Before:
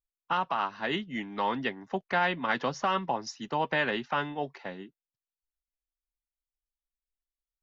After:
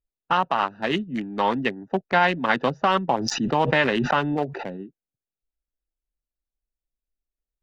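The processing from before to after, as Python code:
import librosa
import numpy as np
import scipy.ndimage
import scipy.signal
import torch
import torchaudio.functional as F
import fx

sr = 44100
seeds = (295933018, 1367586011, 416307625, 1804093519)

y = fx.wiener(x, sr, points=41)
y = fx.pre_swell(y, sr, db_per_s=21.0, at=(3.08, 4.76), fade=0.02)
y = F.gain(torch.from_numpy(y), 8.5).numpy()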